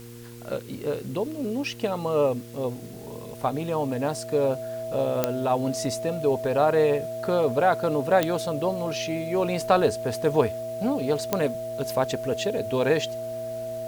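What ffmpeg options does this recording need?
ffmpeg -i in.wav -af "adeclick=threshold=4,bandreject=frequency=118.1:width_type=h:width=4,bandreject=frequency=236.2:width_type=h:width=4,bandreject=frequency=354.3:width_type=h:width=4,bandreject=frequency=472.4:width_type=h:width=4,bandreject=frequency=650:width=30,afwtdn=0.0028" out.wav

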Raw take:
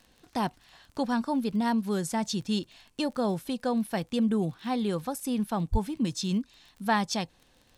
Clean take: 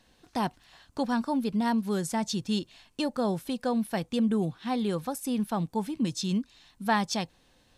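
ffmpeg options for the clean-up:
ffmpeg -i in.wav -filter_complex "[0:a]adeclick=threshold=4,asplit=3[link_01][link_02][link_03];[link_01]afade=type=out:start_time=5.71:duration=0.02[link_04];[link_02]highpass=frequency=140:width=0.5412,highpass=frequency=140:width=1.3066,afade=type=in:start_time=5.71:duration=0.02,afade=type=out:start_time=5.83:duration=0.02[link_05];[link_03]afade=type=in:start_time=5.83:duration=0.02[link_06];[link_04][link_05][link_06]amix=inputs=3:normalize=0" out.wav

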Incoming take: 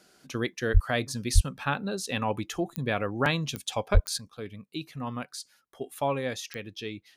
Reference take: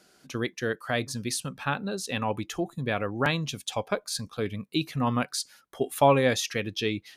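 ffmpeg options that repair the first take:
ffmpeg -i in.wav -filter_complex "[0:a]adeclick=threshold=4,asplit=3[link_01][link_02][link_03];[link_01]afade=type=out:start_time=0.73:duration=0.02[link_04];[link_02]highpass=frequency=140:width=0.5412,highpass=frequency=140:width=1.3066,afade=type=in:start_time=0.73:duration=0.02,afade=type=out:start_time=0.85:duration=0.02[link_05];[link_03]afade=type=in:start_time=0.85:duration=0.02[link_06];[link_04][link_05][link_06]amix=inputs=3:normalize=0,asplit=3[link_07][link_08][link_09];[link_07]afade=type=out:start_time=1.34:duration=0.02[link_10];[link_08]highpass=frequency=140:width=0.5412,highpass=frequency=140:width=1.3066,afade=type=in:start_time=1.34:duration=0.02,afade=type=out:start_time=1.46:duration=0.02[link_11];[link_09]afade=type=in:start_time=1.46:duration=0.02[link_12];[link_10][link_11][link_12]amix=inputs=3:normalize=0,asplit=3[link_13][link_14][link_15];[link_13]afade=type=out:start_time=3.93:duration=0.02[link_16];[link_14]highpass=frequency=140:width=0.5412,highpass=frequency=140:width=1.3066,afade=type=in:start_time=3.93:duration=0.02,afade=type=out:start_time=4.05:duration=0.02[link_17];[link_15]afade=type=in:start_time=4.05:duration=0.02[link_18];[link_16][link_17][link_18]amix=inputs=3:normalize=0,asetnsamples=nb_out_samples=441:pad=0,asendcmd='4.18 volume volume 8.5dB',volume=0dB" out.wav

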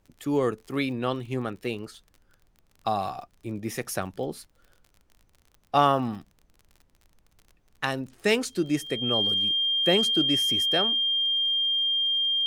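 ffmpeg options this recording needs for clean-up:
ffmpeg -i in.wav -af "adeclick=threshold=4,bandreject=frequency=3200:width=30,agate=range=-21dB:threshold=-55dB" out.wav

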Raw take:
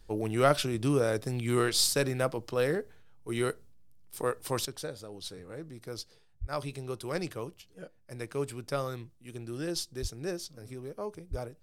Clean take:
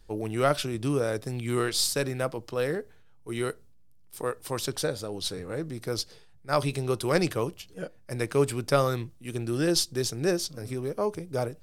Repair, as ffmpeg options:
ffmpeg -i in.wav -filter_complex "[0:a]asplit=3[link_01][link_02][link_03];[link_01]afade=type=out:start_time=6.4:duration=0.02[link_04];[link_02]highpass=frequency=140:width=0.5412,highpass=frequency=140:width=1.3066,afade=type=in:start_time=6.4:duration=0.02,afade=type=out:start_time=6.52:duration=0.02[link_05];[link_03]afade=type=in:start_time=6.52:duration=0.02[link_06];[link_04][link_05][link_06]amix=inputs=3:normalize=0,asplit=3[link_07][link_08][link_09];[link_07]afade=type=out:start_time=10.01:duration=0.02[link_10];[link_08]highpass=frequency=140:width=0.5412,highpass=frequency=140:width=1.3066,afade=type=in:start_time=10.01:duration=0.02,afade=type=out:start_time=10.13:duration=0.02[link_11];[link_09]afade=type=in:start_time=10.13:duration=0.02[link_12];[link_10][link_11][link_12]amix=inputs=3:normalize=0,asplit=3[link_13][link_14][link_15];[link_13]afade=type=out:start_time=11.3:duration=0.02[link_16];[link_14]highpass=frequency=140:width=0.5412,highpass=frequency=140:width=1.3066,afade=type=in:start_time=11.3:duration=0.02,afade=type=out:start_time=11.42:duration=0.02[link_17];[link_15]afade=type=in:start_time=11.42:duration=0.02[link_18];[link_16][link_17][link_18]amix=inputs=3:normalize=0,asetnsamples=nb_out_samples=441:pad=0,asendcmd='4.65 volume volume 9.5dB',volume=0dB" out.wav

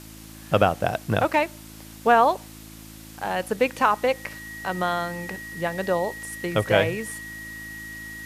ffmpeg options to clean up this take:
ffmpeg -i in.wav -af "adeclick=threshold=4,bandreject=frequency=54.1:width_type=h:width=4,bandreject=frequency=108.2:width_type=h:width=4,bandreject=frequency=162.3:width_type=h:width=4,bandreject=frequency=216.4:width_type=h:width=4,bandreject=frequency=270.5:width_type=h:width=4,bandreject=frequency=324.6:width_type=h:width=4,bandreject=frequency=1900:width=30,afftdn=noise_reduction=25:noise_floor=-43" out.wav

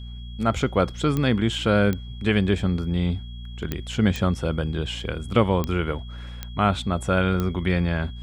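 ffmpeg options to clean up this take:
ffmpeg -i in.wav -af "adeclick=threshold=4,bandreject=frequency=59.5:width_type=h:width=4,bandreject=frequency=119:width_type=h:width=4,bandreject=frequency=178.5:width_type=h:width=4,bandreject=frequency=238:width_type=h:width=4,bandreject=frequency=3300:width=30" out.wav

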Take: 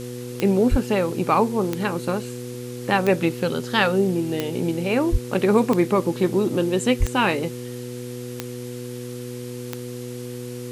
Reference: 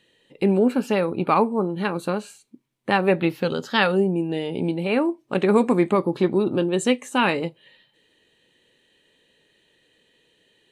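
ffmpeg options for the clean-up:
ffmpeg -i in.wav -filter_complex "[0:a]adeclick=threshold=4,bandreject=frequency=122.7:width_type=h:width=4,bandreject=frequency=245.4:width_type=h:width=4,bandreject=frequency=368.1:width_type=h:width=4,bandreject=frequency=490.8:width_type=h:width=4,asplit=3[link_01][link_02][link_03];[link_01]afade=type=out:start_time=0.7:duration=0.02[link_04];[link_02]highpass=frequency=140:width=0.5412,highpass=frequency=140:width=1.3066,afade=type=in:start_time=0.7:duration=0.02,afade=type=out:start_time=0.82:duration=0.02[link_05];[link_03]afade=type=in:start_time=0.82:duration=0.02[link_06];[link_04][link_05][link_06]amix=inputs=3:normalize=0,asplit=3[link_07][link_08][link_09];[link_07]afade=type=out:start_time=5.11:duration=0.02[link_10];[link_08]highpass=frequency=140:width=0.5412,highpass=frequency=140:width=1.3066,afade=type=in:start_time=5.11:duration=0.02,afade=type=out:start_time=5.23:duration=0.02[link_11];[link_09]afade=type=in:start_time=5.23:duration=0.02[link_12];[link_10][link_11][link_12]amix=inputs=3:normalize=0,asplit=3[link_13][link_14][link_15];[link_13]afade=type=out:start_time=6.99:duration=0.02[link_16];[link_14]highpass=frequency=140:width=0.5412,highpass=frequency=140:width=1.3066,afade=type=in:start_time=6.99:duration=0.02,afade=type=out:start_time=7.11:duration=0.02[link_17];[link_15]afade=type=in:start_time=7.11:duration=0.02[link_18];[link_16][link_17][link_18]amix=inputs=3:normalize=0,afftdn=noise_reduction=30:noise_floor=-33" out.wav

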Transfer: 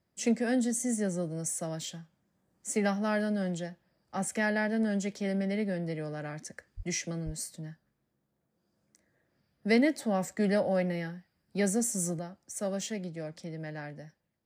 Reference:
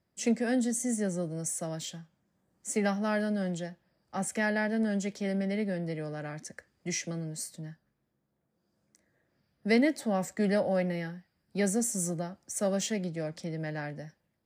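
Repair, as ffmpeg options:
ffmpeg -i in.wav -filter_complex "[0:a]asplit=3[link_01][link_02][link_03];[link_01]afade=type=out:start_time=6.76:duration=0.02[link_04];[link_02]highpass=frequency=140:width=0.5412,highpass=frequency=140:width=1.3066,afade=type=in:start_time=6.76:duration=0.02,afade=type=out:start_time=6.88:duration=0.02[link_05];[link_03]afade=type=in:start_time=6.88:duration=0.02[link_06];[link_04][link_05][link_06]amix=inputs=3:normalize=0,asplit=3[link_07][link_08][link_09];[link_07]afade=type=out:start_time=7.25:duration=0.02[link_10];[link_08]highpass=frequency=140:width=0.5412,highpass=frequency=140:width=1.3066,afade=type=in:start_time=7.25:duration=0.02,afade=type=out:start_time=7.37:duration=0.02[link_11];[link_09]afade=type=in:start_time=7.37:duration=0.02[link_12];[link_10][link_11][link_12]amix=inputs=3:normalize=0,asetnsamples=nb_out_samples=441:pad=0,asendcmd='12.19 volume volume 4dB',volume=0dB" out.wav

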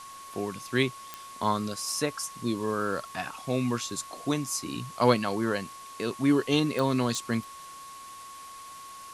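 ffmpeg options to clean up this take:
ffmpeg -i in.wav -af "adeclick=threshold=4,bandreject=frequency=1100:width=30,afwtdn=0.004" out.wav

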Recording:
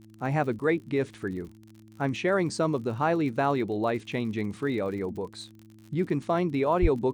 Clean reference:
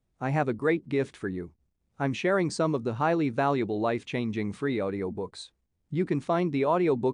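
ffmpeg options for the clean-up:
ffmpeg -i in.wav -filter_complex "[0:a]adeclick=threshold=4,bandreject=frequency=108.9:width_type=h:width=4,bandreject=frequency=217.8:width_type=h:width=4,bandreject=frequency=326.7:width_type=h:width=4,asplit=3[link_01][link_02][link_03];[link_01]afade=type=out:start_time=6.81:duration=0.02[link_04];[link_02]highpass=frequency=140:width=0.5412,highpass=frequency=140:width=1.3066,afade=type=in:start_time=6.81:duration=0.02,afade=type=out:start_time=6.93:duration=0.02[link_05];[link_03]afade=type=in:start_time=6.93:duration=0.02[link_06];[link_04][link_05][link_06]amix=inputs=3:normalize=0" out.wav

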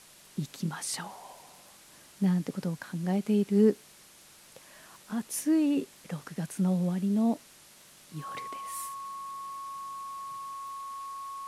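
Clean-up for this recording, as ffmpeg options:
ffmpeg -i in.wav -af "adeclick=threshold=4,bandreject=frequency=1100:width=30,afwtdn=0.0022" out.wav

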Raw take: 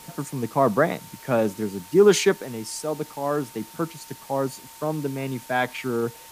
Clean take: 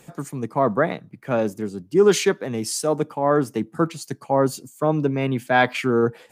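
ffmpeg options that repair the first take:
ffmpeg -i in.wav -af "bandreject=frequency=910:width=30,afwtdn=0.0056,asetnsamples=nb_out_samples=441:pad=0,asendcmd='2.42 volume volume 6.5dB',volume=0dB" out.wav

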